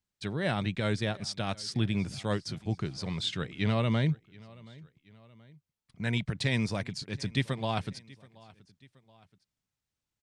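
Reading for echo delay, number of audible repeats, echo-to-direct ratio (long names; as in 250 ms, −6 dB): 727 ms, 2, −22.0 dB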